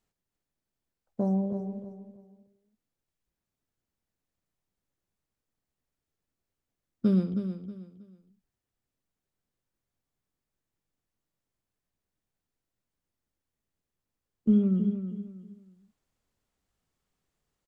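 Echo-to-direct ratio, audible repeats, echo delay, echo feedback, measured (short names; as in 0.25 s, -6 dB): -9.0 dB, 3, 0.318 s, 29%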